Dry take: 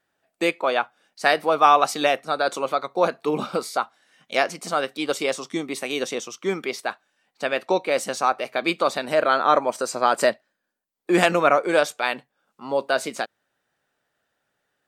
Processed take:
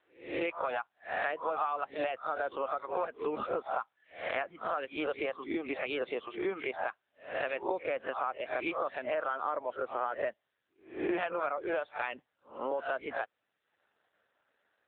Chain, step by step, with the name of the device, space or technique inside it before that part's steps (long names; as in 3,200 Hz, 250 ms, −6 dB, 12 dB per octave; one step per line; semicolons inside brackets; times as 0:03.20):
peak hold with a rise ahead of every peak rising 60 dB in 0.41 s
reverb reduction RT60 0.5 s
0:05.39–0:06.03: high-pass filter 100 Hz 24 dB per octave
dynamic equaliser 7,600 Hz, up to −6 dB, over −51 dBFS, Q 3.4
voicemail (band-pass filter 310–2,900 Hz; downward compressor 6 to 1, threshold −32 dBFS, peak gain reduction 20.5 dB; level +1.5 dB; AMR narrowband 7.95 kbit/s 8,000 Hz)